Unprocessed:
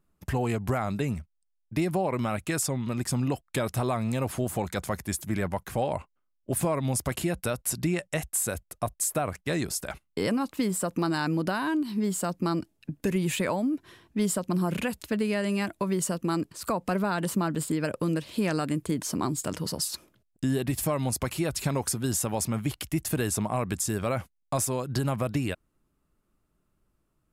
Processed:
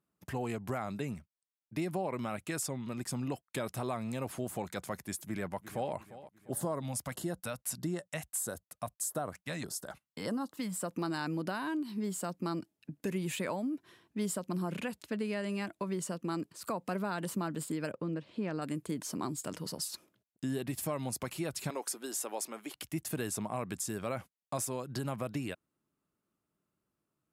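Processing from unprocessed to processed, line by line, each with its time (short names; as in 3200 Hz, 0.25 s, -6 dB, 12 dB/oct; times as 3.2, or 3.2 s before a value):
5.24–5.93 echo throw 0.35 s, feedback 45%, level -15 dB
6.51–10.83 LFO notch square 1.6 Hz 380–2400 Hz
14.62–16.38 high shelf 11000 Hz -9 dB
17.92–18.62 tape spacing loss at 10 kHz 24 dB
21.7–22.74 HPF 310 Hz 24 dB/oct
whole clip: HPF 130 Hz; gain -7.5 dB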